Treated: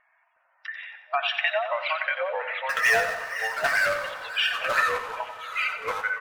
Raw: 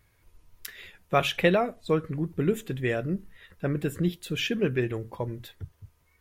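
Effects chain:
brick-wall band-pass 620–5,800 Hz
low-pass that shuts in the quiet parts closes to 1,700 Hz, open at −25.5 dBFS
gate on every frequency bin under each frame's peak −20 dB strong
downward compressor, threshold −31 dBFS, peak gain reduction 11.5 dB
hollow resonant body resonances 1,800/2,800 Hz, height 11 dB
0:02.69–0:03.74: power curve on the samples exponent 0.5
delay with pitch and tempo change per echo 364 ms, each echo −3 semitones, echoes 2
repeating echo 91 ms, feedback 41%, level −9.5 dB
on a send at −18 dB: convolution reverb RT60 5.3 s, pre-delay 83 ms
on the sum: level +7.5 dB

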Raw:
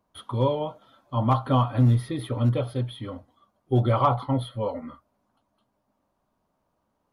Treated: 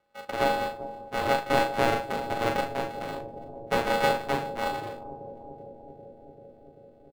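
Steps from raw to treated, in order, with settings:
samples sorted by size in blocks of 64 samples
high-pass filter 130 Hz 12 dB per octave
bass and treble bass −12 dB, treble −12 dB
in parallel at −1.5 dB: downward compressor, threshold −36 dBFS, peak gain reduction 18 dB
on the sum: pitch-shifted copies added −12 semitones −12 dB
ring modulation 130 Hz
double-tracking delay 38 ms −6 dB
on a send: bucket-brigade delay 390 ms, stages 2,048, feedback 77%, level −12 dB
on the sum: rectangular room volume 2,800 cubic metres, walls furnished, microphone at 0.38 metres

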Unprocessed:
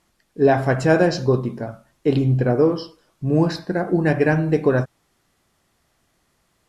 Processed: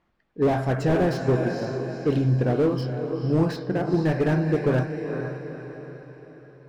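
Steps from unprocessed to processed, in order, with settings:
low-pass that shuts in the quiet parts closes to 2,300 Hz, open at −12 dBFS
feedback delay with all-pass diffusion 471 ms, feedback 47%, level −8.5 dB
slew-rate limiting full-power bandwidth 90 Hz
level −3.5 dB

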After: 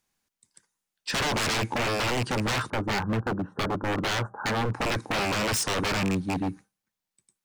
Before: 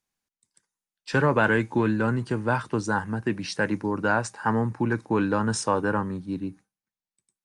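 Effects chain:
loose part that buzzes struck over −28 dBFS, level −23 dBFS
0:02.70–0:04.74: elliptic low-pass filter 1,400 Hz, stop band 40 dB
in parallel at +1 dB: brickwall limiter −16 dBFS, peak gain reduction 7 dB
on the sum: wave folding −21.5 dBFS

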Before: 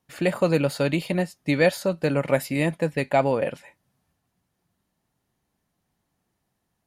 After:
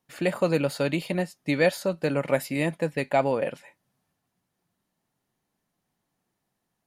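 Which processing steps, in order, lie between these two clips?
parametric band 60 Hz −11.5 dB 1.3 octaves
level −2 dB

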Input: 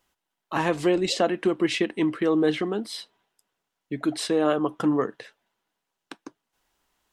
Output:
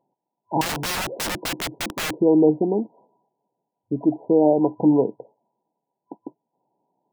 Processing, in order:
brick-wall band-pass 110–1,000 Hz
0:00.61–0:02.16: wrap-around overflow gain 27.5 dB
level +6 dB

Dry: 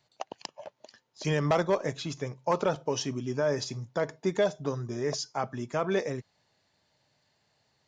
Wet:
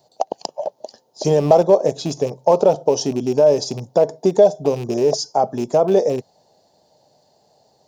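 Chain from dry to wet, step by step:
loose part that buzzes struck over −33 dBFS, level −28 dBFS
drawn EQ curve 120 Hz 0 dB, 170 Hz +6 dB, 300 Hz +7 dB, 460 Hz +13 dB, 770 Hz +14 dB, 1,200 Hz −4 dB, 2,200 Hz −11 dB, 4,900 Hz +6 dB, 7,900 Hz +5 dB, 12,000 Hz +10 dB
in parallel at +2 dB: downward compressor, threshold −23 dBFS, peak gain reduction 14 dB
on the sum: level −1 dB

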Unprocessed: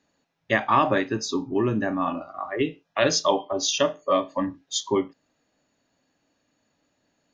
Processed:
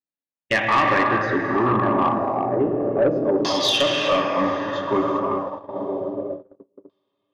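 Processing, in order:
on a send: feedback delay with all-pass diffusion 957 ms, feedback 42%, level −8.5 dB
on the sum: reverb whose tail is shaped and stops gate 430 ms flat, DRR 1.5 dB
in parallel at −2 dB: downward compressor, threshold −32 dBFS, peak gain reduction 17.5 dB
on the sum: auto-filter low-pass saw down 0.29 Hz 370–4,300 Hz
noise gate −26 dBFS, range −38 dB
low-pass that shuts in the quiet parts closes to 2,600 Hz, open at −14 dBFS
soft clipping −11 dBFS, distortion −16 dB

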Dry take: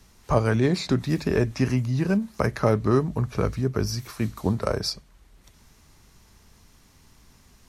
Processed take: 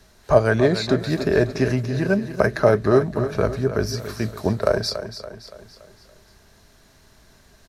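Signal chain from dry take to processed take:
thirty-one-band graphic EQ 400 Hz +6 dB, 630 Hz +12 dB, 1,600 Hz +9 dB, 4,000 Hz +6 dB
repeating echo 284 ms, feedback 48%, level −11 dB

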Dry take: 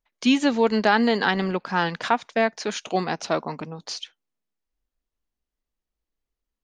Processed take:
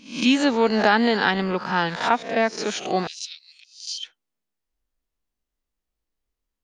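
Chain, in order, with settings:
peak hold with a rise ahead of every peak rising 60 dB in 0.45 s
0:03.07–0:04.03: Butterworth high-pass 2,900 Hz 36 dB per octave

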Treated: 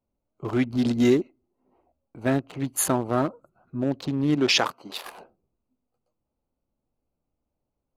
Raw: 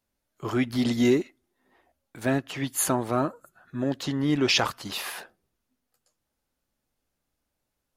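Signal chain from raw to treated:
adaptive Wiener filter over 25 samples
0:04.34–0:05.03: high-pass filter 120 Hz → 410 Hz 12 dB per octave
level +2 dB

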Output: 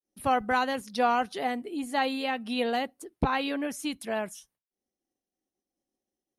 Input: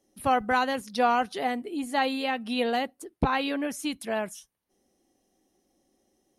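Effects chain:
downward expander −59 dBFS
level −1.5 dB

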